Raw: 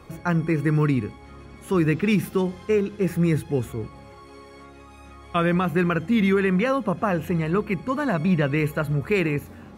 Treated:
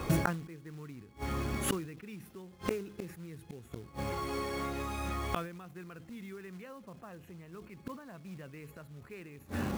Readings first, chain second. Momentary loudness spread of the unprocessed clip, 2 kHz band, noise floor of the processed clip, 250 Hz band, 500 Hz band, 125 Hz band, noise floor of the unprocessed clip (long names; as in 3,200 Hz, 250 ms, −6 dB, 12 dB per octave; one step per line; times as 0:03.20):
7 LU, −14.5 dB, −56 dBFS, −16.5 dB, −16.5 dB, −15.5 dB, −46 dBFS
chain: floating-point word with a short mantissa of 2 bits
gate with flip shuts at −26 dBFS, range −35 dB
level that may fall only so fast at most 90 dB per second
level +9 dB